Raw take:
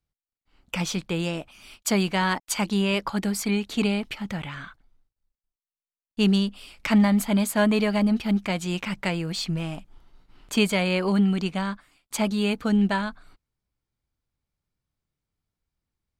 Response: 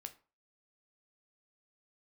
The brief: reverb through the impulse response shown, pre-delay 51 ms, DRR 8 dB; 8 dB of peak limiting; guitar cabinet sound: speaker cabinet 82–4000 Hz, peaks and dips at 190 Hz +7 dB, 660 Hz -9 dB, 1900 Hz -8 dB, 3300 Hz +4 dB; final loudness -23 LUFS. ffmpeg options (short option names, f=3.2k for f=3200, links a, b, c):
-filter_complex "[0:a]alimiter=limit=-18dB:level=0:latency=1,asplit=2[a][b];[1:a]atrim=start_sample=2205,adelay=51[c];[b][c]afir=irnorm=-1:irlink=0,volume=-3dB[d];[a][d]amix=inputs=2:normalize=0,highpass=82,equalizer=f=190:t=q:w=4:g=7,equalizer=f=660:t=q:w=4:g=-9,equalizer=f=1.9k:t=q:w=4:g=-8,equalizer=f=3.3k:t=q:w=4:g=4,lowpass=f=4k:w=0.5412,lowpass=f=4k:w=1.3066"